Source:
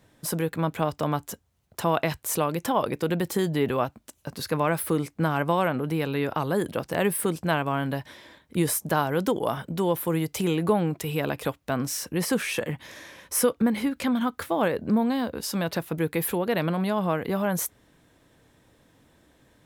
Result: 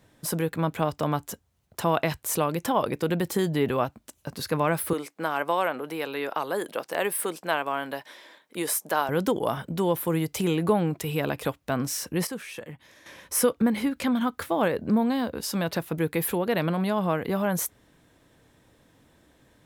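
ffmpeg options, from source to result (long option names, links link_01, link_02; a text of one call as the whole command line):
ffmpeg -i in.wav -filter_complex "[0:a]asettb=1/sr,asplit=3[link_01][link_02][link_03];[link_01]atrim=end=4.934[link_04];[link_02]atrim=start=4.93:end=9.09,asetpts=PTS-STARTPTS,afade=type=in:duration=0.004:curve=qsin,afade=type=out:start_time=4.156:duration=0.004:curve=qsin,highpass=420[link_05];[link_03]atrim=start=9.086[link_06];[link_04][link_05]acrossfade=duration=0.004:curve1=hsin:curve2=qsin[link_07];[link_07][link_06]acrossfade=duration=0.004:curve1=qsin:curve2=hsin,asplit=3[link_08][link_09][link_10];[link_08]atrim=end=12.272[link_11];[link_09]atrim=start=12.268:end=13.062,asetpts=PTS-STARTPTS,volume=-10.5dB[link_12];[link_10]atrim=start=13.058[link_13];[link_11][link_12]acrossfade=duration=0.004:curve1=hsin:curve2=hsin[link_14];[link_14][link_13]acrossfade=duration=0.004:curve1=hsin:curve2=hsin" out.wav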